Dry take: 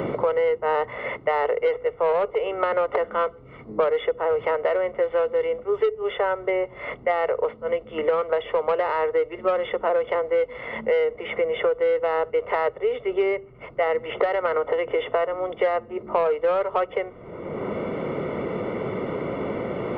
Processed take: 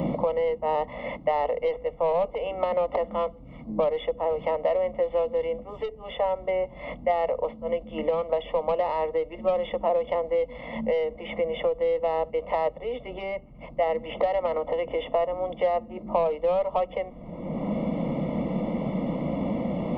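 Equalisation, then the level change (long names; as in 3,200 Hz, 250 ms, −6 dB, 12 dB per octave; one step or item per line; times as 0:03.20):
bass and treble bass +11 dB, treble 0 dB
phaser with its sweep stopped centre 400 Hz, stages 6
0.0 dB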